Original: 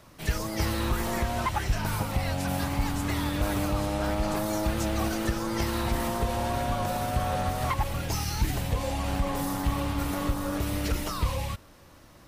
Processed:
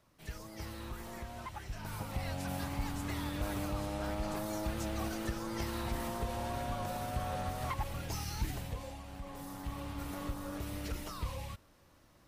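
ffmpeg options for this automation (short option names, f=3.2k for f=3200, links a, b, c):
-af "volume=-1dB,afade=t=in:st=1.69:d=0.55:silence=0.446684,afade=t=out:st=8.43:d=0.64:silence=0.316228,afade=t=in:st=9.07:d=1.09:silence=0.398107"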